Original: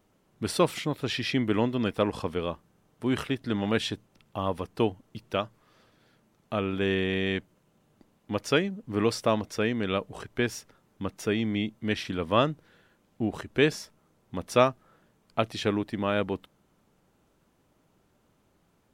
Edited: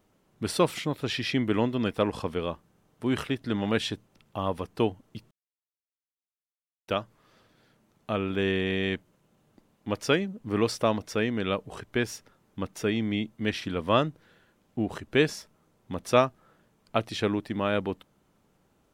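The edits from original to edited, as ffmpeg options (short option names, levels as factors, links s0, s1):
-filter_complex "[0:a]asplit=2[s0][s1];[s0]atrim=end=5.31,asetpts=PTS-STARTPTS,afade=t=out:st=5.306:d=0.004:c=hsin,apad=pad_dur=1.57[s2];[s1]atrim=start=5.31,asetpts=PTS-STARTPTS,afade=t=in:d=0.004:c=hsin[s3];[s2][s3]concat=n=2:v=0:a=1"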